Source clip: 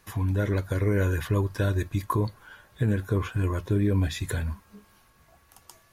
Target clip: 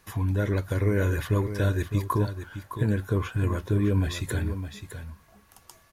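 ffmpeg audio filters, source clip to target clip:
ffmpeg -i in.wav -af "aecho=1:1:610:0.316" out.wav

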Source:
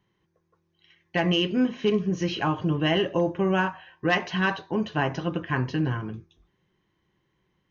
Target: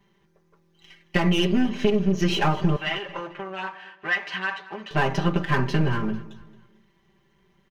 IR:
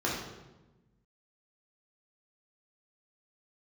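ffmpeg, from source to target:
-filter_complex "[0:a]aeval=exprs='if(lt(val(0),0),0.447*val(0),val(0))':channel_layout=same,aecho=1:1:5.1:0.93,alimiter=limit=-12.5dB:level=0:latency=1:release=474,acompressor=threshold=-24dB:ratio=6,asettb=1/sr,asplit=3[link_01][link_02][link_03];[link_01]atrim=end=2.764[link_04];[link_02]atrim=start=2.76:end=4.91,asetpts=PTS-STARTPTS,afade=type=in:duration=0.004:curve=qsin,afade=type=out:start_time=2.146:duration=0.004:curve=qsin,bandpass=frequency=1900:width_type=q:width=1:csg=0[link_05];[link_03]atrim=start=4.906[link_06];[link_04][link_05]acrossfade=duration=0.004:curve1=hsin:curve2=qsin[link_07];[link_07][link_06]acrossfade=duration=0.004:curve1=qsin:curve2=hsin,aecho=1:1:223|446|669:0.112|0.046|0.0189,volume=7.5dB"

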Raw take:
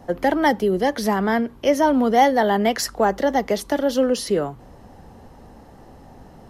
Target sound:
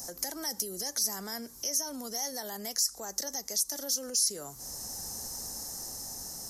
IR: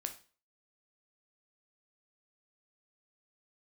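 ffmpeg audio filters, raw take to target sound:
-af "highshelf=frequency=4200:width_type=q:width=3:gain=12,dynaudnorm=framelen=430:gausssize=7:maxgain=11.5dB,alimiter=level_in=2.5dB:limit=-24dB:level=0:latency=1:release=246,volume=-2.5dB,crystalizer=i=8.5:c=0,volume=-9dB"

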